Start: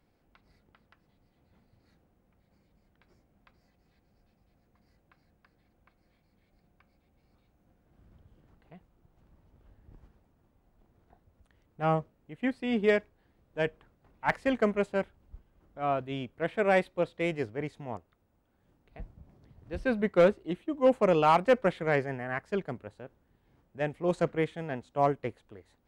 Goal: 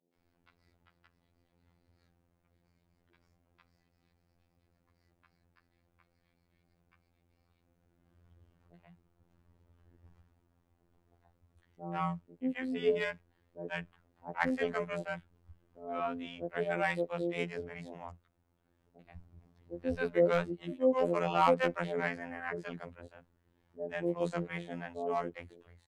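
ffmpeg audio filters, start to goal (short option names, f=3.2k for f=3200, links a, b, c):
-filter_complex "[0:a]acrossover=split=190|600[a][b][c];[c]adelay=130[d];[a]adelay=160[e];[e][b][d]amix=inputs=3:normalize=0,afftfilt=real='hypot(re,im)*cos(PI*b)':imag='0':win_size=2048:overlap=0.75"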